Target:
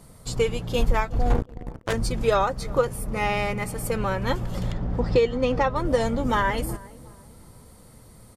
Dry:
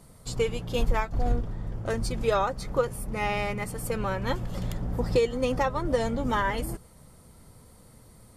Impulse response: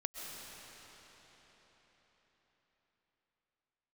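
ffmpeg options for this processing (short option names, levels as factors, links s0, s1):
-filter_complex "[0:a]asettb=1/sr,asplit=3[s0][s1][s2];[s0]atrim=end=1.304[s3];[s1]atrim=start=1.3:end=1.93,asetpts=PTS-STARTPTS,afade=t=in:d=0.004:c=qsin,afade=t=out:st=0.626:d=0.004:c=qsin,acrusher=bits=3:mix=0:aa=0.5[s4];[s2]atrim=start=1.926[s5];[s3][s4]acrossfade=d=0.004:c1=hsin:c2=qsin[s6];[s6][s5]acrossfade=d=0.004:c1=qsin:c2=hsin,asettb=1/sr,asplit=3[s7][s8][s9];[s7]atrim=end=4.714[s10];[s8]atrim=start=4.71:end=5.76,asetpts=PTS-STARTPTS,afade=t=in:d=0.004:c=qsin,afade=t=out:st=1.046:d=0.004:c=qsin,lowpass=4600[s11];[s9]atrim=start=5.756[s12];[s10][s11]acrossfade=d=0.004:c1=hsin:c2=qsin[s13];[s13][s12]acrossfade=d=0.004:c1=qsin:c2=hsin,asplit=2[s14][s15];[s15]adelay=366,lowpass=f=1100:p=1,volume=0.106,asplit=2[s16][s17];[s17]adelay=366,lowpass=f=1100:p=1,volume=0.42,asplit=2[s18][s19];[s19]adelay=366,lowpass=f=1100:p=1,volume=0.42[s20];[s14][s16][s18][s20]amix=inputs=4:normalize=0,volume=1.5"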